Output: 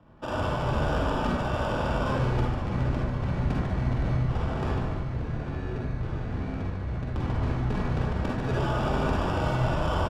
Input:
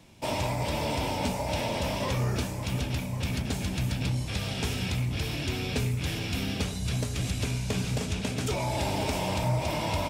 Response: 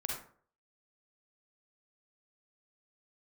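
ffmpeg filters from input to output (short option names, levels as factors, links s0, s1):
-filter_complex "[0:a]asettb=1/sr,asplit=3[s0][s1][s2];[s0]atrim=end=4.774[s3];[s1]atrim=start=4.77:end=7.16,asetpts=PTS-STARTPTS,afade=t=in:d=0.004:c=qsin,afade=t=out:st=2.386:d=0.004:c=qsin,acrossover=split=92|340|1900[s4][s5][s6][s7];[s4]acompressor=threshold=0.0126:ratio=4[s8];[s5]acompressor=threshold=0.0158:ratio=4[s9];[s6]acompressor=threshold=0.00891:ratio=4[s10];[s7]acompressor=threshold=0.00398:ratio=4[s11];[s8][s9][s10][s11]amix=inputs=4:normalize=0[s12];[s2]atrim=start=7.156[s13];[s3][s12]acrossfade=d=0.004:c1=hsin:c2=qsin[s14];[s14][s13]acrossfade=d=0.004:c1=qsin:c2=hsin,acrusher=samples=21:mix=1:aa=0.000001,adynamicsmooth=sensitivity=1.5:basefreq=2300,asplit=8[s15][s16][s17][s18][s19][s20][s21][s22];[s16]adelay=147,afreqshift=-100,volume=0.473[s23];[s17]adelay=294,afreqshift=-200,volume=0.254[s24];[s18]adelay=441,afreqshift=-300,volume=0.138[s25];[s19]adelay=588,afreqshift=-400,volume=0.0741[s26];[s20]adelay=735,afreqshift=-500,volume=0.0403[s27];[s21]adelay=882,afreqshift=-600,volume=0.0216[s28];[s22]adelay=1029,afreqshift=-700,volume=0.0117[s29];[s15][s23][s24][s25][s26][s27][s28][s29]amix=inputs=8:normalize=0[s30];[1:a]atrim=start_sample=2205[s31];[s30][s31]afir=irnorm=-1:irlink=0"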